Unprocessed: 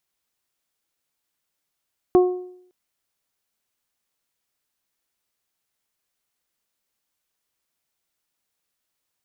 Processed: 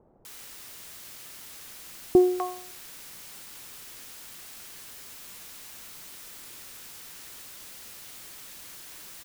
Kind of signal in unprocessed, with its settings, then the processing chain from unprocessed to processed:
additive tone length 0.56 s, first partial 363 Hz, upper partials -10.5/-18 dB, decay 0.68 s, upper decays 0.53/0.44 s, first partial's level -9 dB
added noise white -45 dBFS; bands offset in time lows, highs 250 ms, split 710 Hz

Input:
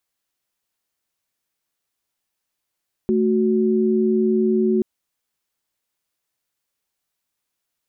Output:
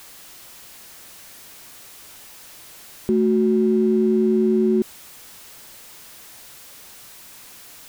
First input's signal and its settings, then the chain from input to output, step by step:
chord A3/F#4 sine, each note -18 dBFS 1.73 s
jump at every zero crossing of -37 dBFS

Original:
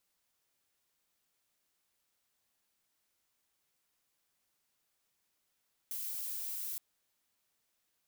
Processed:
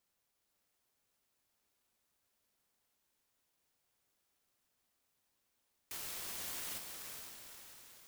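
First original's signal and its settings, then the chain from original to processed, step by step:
noise violet, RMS -39.5 dBFS 0.87 s
comb of notches 160 Hz; on a send: echo that smears into a reverb 471 ms, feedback 51%, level -4.5 dB; on the sum: sampling jitter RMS 0.14 ms

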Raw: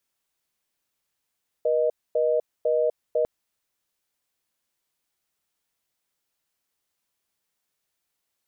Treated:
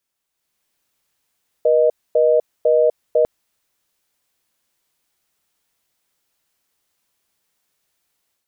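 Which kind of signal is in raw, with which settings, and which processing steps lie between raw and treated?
call progress tone reorder tone, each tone -22 dBFS 1.60 s
level rider gain up to 8 dB

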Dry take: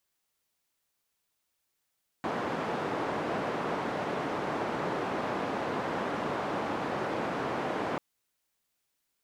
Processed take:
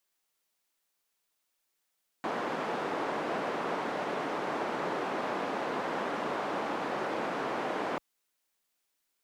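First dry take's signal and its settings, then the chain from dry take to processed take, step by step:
noise band 170–890 Hz, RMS -32.5 dBFS 5.74 s
peaking EQ 85 Hz -15 dB 1.5 oct

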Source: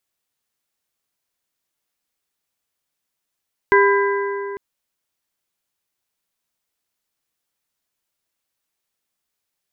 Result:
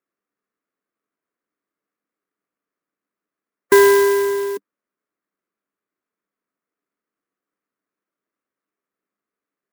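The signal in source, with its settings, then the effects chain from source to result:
metal hit plate, length 0.85 s, lowest mode 400 Hz, modes 4, decay 3.22 s, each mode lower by 2 dB, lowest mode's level -12 dB
spectral gate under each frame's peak -25 dB strong; cabinet simulation 200–2100 Hz, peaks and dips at 200 Hz +7 dB, 290 Hz +8 dB, 420 Hz +6 dB, 840 Hz -8 dB, 1.2 kHz +5 dB; sampling jitter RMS 0.048 ms

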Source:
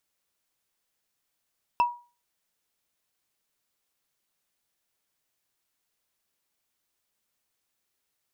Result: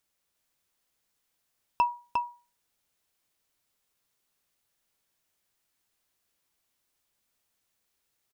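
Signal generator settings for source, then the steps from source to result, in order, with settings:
wood hit, lowest mode 962 Hz, decay 0.34 s, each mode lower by 11 dB, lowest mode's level -15.5 dB
bass shelf 130 Hz +3.5 dB; on a send: delay 354 ms -4 dB

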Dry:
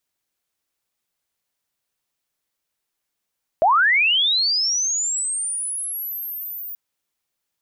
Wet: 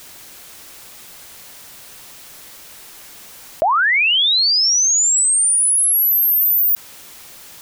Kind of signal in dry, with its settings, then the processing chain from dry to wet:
sweep linear 600 Hz -> 15 kHz -12 dBFS -> -29.5 dBFS 3.13 s
level flattener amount 100%

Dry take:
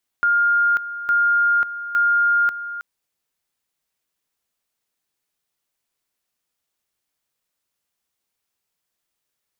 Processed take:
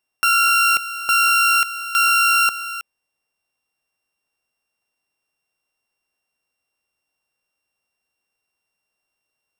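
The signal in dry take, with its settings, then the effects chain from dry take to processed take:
two-level tone 1.41 kHz -14 dBFS, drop 13 dB, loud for 0.54 s, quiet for 0.32 s, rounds 3
sorted samples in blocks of 16 samples; peaking EQ 770 Hz +5 dB 1.7 oct

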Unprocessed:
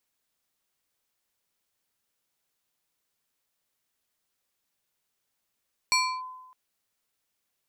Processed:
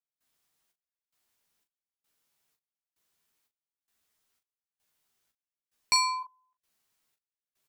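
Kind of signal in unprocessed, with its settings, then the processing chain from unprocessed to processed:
FM tone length 0.61 s, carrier 1.02 kHz, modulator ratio 3.3, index 1.7, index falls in 0.30 s linear, decay 1.08 s, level -18 dB
band-stop 530 Hz, Q 12; trance gate "..xxxxx.." 147 bpm -24 dB; on a send: early reflections 13 ms -4 dB, 40 ms -7.5 dB

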